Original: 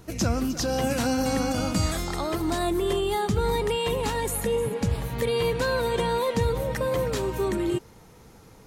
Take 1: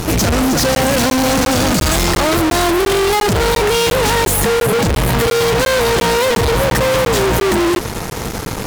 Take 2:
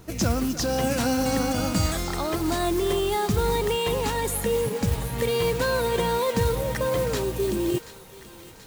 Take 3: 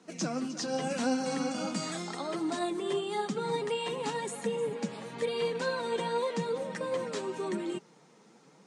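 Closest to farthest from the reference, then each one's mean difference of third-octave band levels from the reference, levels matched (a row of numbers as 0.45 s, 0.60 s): 2, 3, 1; 2.5 dB, 4.5 dB, 7.0 dB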